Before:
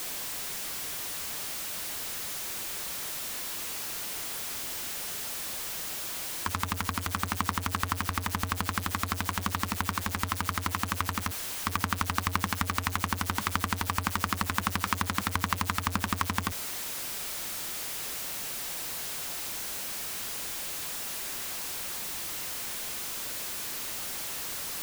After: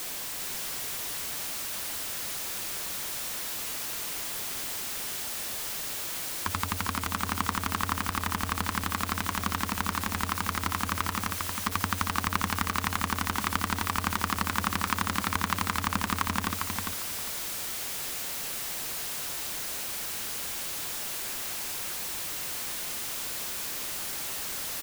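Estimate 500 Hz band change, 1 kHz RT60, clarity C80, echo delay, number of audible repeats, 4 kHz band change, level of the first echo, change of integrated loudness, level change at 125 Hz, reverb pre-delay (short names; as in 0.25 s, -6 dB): +1.5 dB, none, none, 0.402 s, 2, +1.0 dB, -5.0 dB, +1.0 dB, -0.5 dB, none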